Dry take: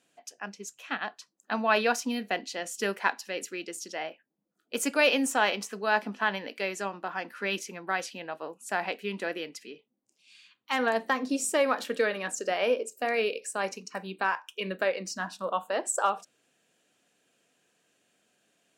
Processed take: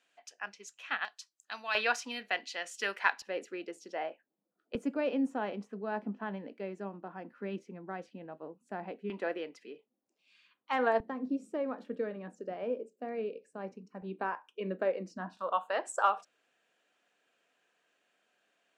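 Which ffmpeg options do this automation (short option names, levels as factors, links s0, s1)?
-af "asetnsamples=n=441:p=0,asendcmd='1.05 bandpass f 6000;1.75 bandpass f 2000;3.22 bandpass f 630;4.75 bandpass f 160;9.1 bandpass f 640;11 bandpass f 120;14.02 bandpass f 300;15.37 bandpass f 1300',bandpass=f=1900:t=q:w=0.64:csg=0"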